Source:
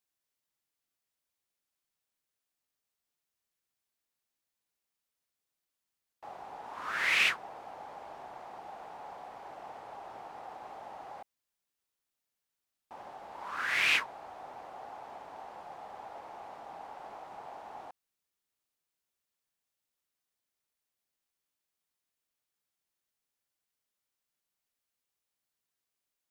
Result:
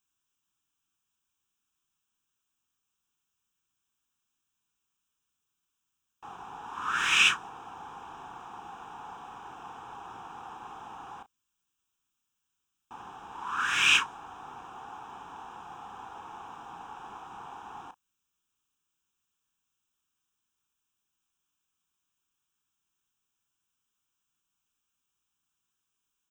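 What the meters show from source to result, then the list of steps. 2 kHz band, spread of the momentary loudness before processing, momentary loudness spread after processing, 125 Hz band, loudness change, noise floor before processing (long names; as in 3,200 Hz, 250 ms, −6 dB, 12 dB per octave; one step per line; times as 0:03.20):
+3.0 dB, 20 LU, 23 LU, +7.0 dB, +6.5 dB, below −85 dBFS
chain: dynamic equaliser 7,600 Hz, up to +4 dB, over −47 dBFS, Q 0.82
phaser with its sweep stopped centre 3,000 Hz, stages 8
double-tracking delay 34 ms −12 dB
level +7 dB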